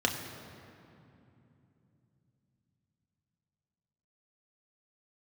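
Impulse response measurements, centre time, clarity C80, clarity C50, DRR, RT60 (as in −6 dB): 52 ms, 7.0 dB, 6.0 dB, 1.0 dB, 2.9 s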